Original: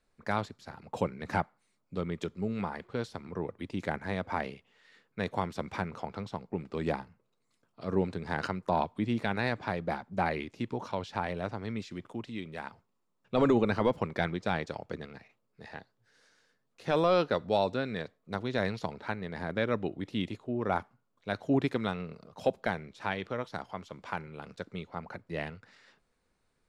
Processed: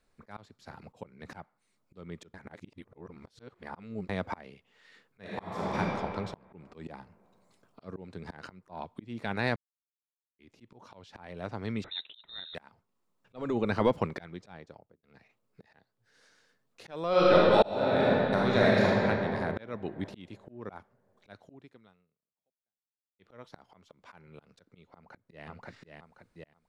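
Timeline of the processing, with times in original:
2.34–4.09 s: reverse
5.19–5.77 s: reverb throw, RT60 2.3 s, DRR -5 dB
6.54–7.91 s: gain +4 dB
9.56–10.39 s: mute
11.84–12.55 s: frequency inversion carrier 3.9 kHz
14.32–15.03 s: studio fade out
17.09–18.96 s: reverb throw, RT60 2.9 s, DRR -6.5 dB
21.36–23.19 s: fade out exponential
24.89–25.47 s: echo throw 530 ms, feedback 30%, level -3 dB
whole clip: slow attack 504 ms; trim +2 dB

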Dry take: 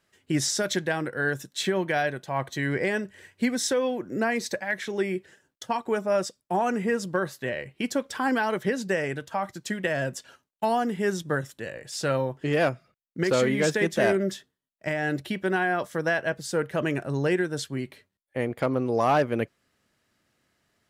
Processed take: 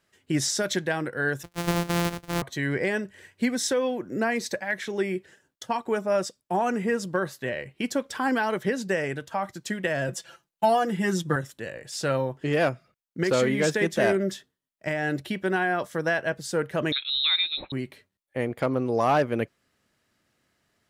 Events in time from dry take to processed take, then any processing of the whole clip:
1.43–2.42 s: sorted samples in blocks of 256 samples
10.08–11.36 s: comb 5.9 ms, depth 96%
16.92–17.72 s: frequency inversion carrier 4 kHz

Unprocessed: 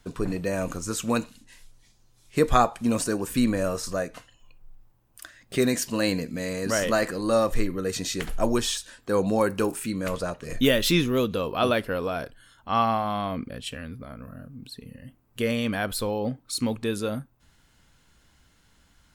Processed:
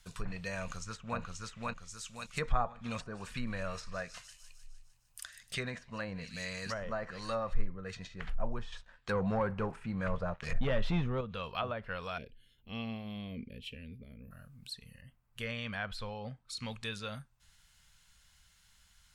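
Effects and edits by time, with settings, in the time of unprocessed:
0.59–1.20 s: echo throw 530 ms, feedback 40%, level -1.5 dB
2.41–7.61 s: feedback echo behind a high-pass 152 ms, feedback 59%, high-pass 2.7 kHz, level -12 dB
8.72–11.21 s: waveshaping leveller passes 2
12.18–14.31 s: FFT filter 160 Hz 0 dB, 250 Hz +10 dB, 440 Hz +9 dB, 720 Hz -16 dB, 1.3 kHz -26 dB, 2.4 kHz -3 dB, 5.2 kHz -17 dB, 8.5 kHz -24 dB, 14 kHz -4 dB
15.01–16.57 s: treble shelf 3.2 kHz -11.5 dB
whole clip: amplifier tone stack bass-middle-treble 10-0-10; low-pass that closes with the level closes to 900 Hz, closed at -29.5 dBFS; peaking EQ 200 Hz +6.5 dB 1.2 oct; trim +1 dB

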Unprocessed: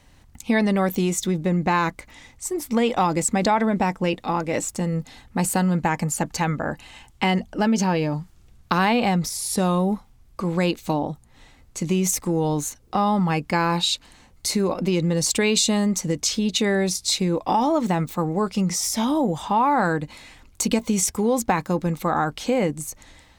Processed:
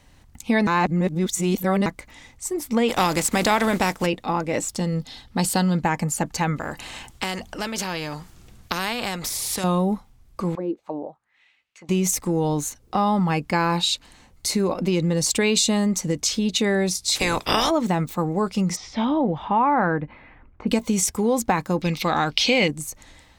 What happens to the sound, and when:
0.67–1.86 s: reverse
2.88–4.05 s: spectral contrast reduction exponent 0.62
4.69–5.81 s: high-order bell 4.1 kHz +8.5 dB 1 oct
6.56–9.64 s: spectrum-flattening compressor 2:1
10.55–11.89 s: auto-wah 330–2900 Hz, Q 3.1, down, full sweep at -18 dBFS
17.15–17.69 s: spectral peaks clipped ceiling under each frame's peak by 29 dB
18.75–20.67 s: low-pass 4 kHz -> 1.8 kHz 24 dB/octave
21.82–22.68 s: high-order bell 3.5 kHz +15.5 dB

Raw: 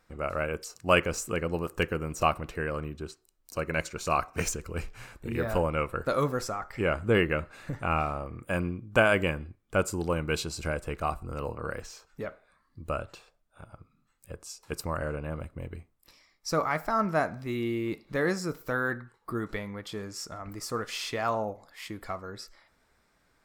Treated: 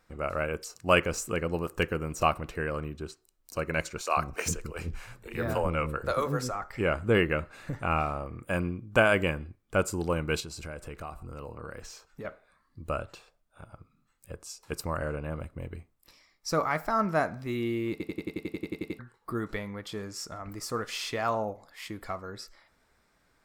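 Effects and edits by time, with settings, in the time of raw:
4.01–6.55 s: bands offset in time highs, lows 100 ms, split 370 Hz
10.40–12.25 s: compression 3:1, threshold -38 dBFS
17.91 s: stutter in place 0.09 s, 12 plays

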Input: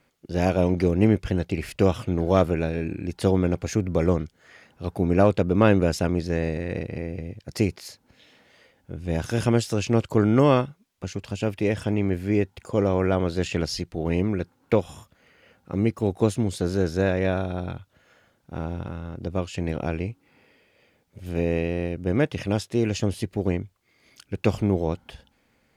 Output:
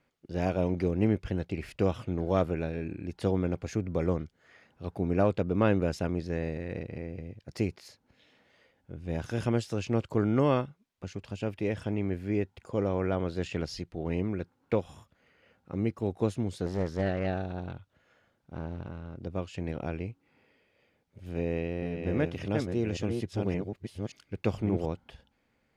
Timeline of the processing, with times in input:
16.66–19.16 s: loudspeaker Doppler distortion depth 0.59 ms
21.25–24.86 s: chunks repeated in reverse 574 ms, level -4 dB
whole clip: treble shelf 6.4 kHz -9.5 dB; trim -7 dB

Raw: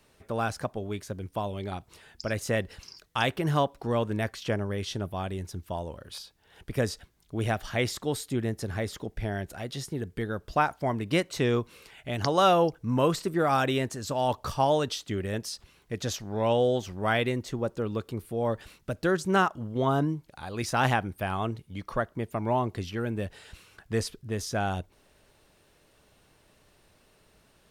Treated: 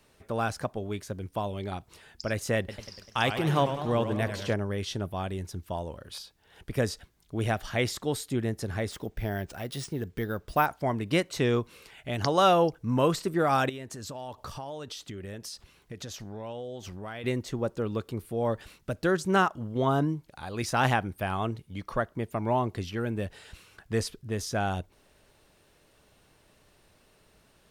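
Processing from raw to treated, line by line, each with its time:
2.58–4.54 s: modulated delay 98 ms, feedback 63%, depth 168 cents, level -9 dB
8.91–10.66 s: careless resampling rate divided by 3×, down none, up hold
13.69–17.24 s: compression, threshold -36 dBFS

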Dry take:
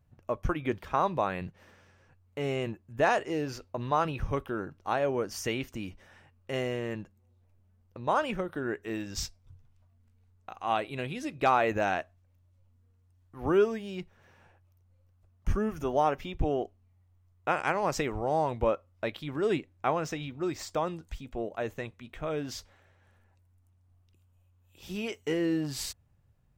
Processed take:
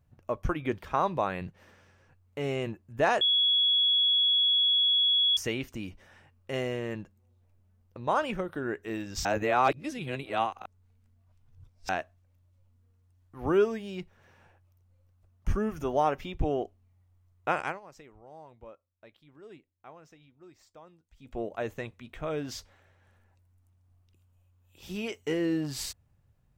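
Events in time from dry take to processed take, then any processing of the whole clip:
3.21–5.37 s: bleep 3.36 kHz -21 dBFS
9.25–11.89 s: reverse
17.59–21.37 s: dip -21.5 dB, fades 0.21 s

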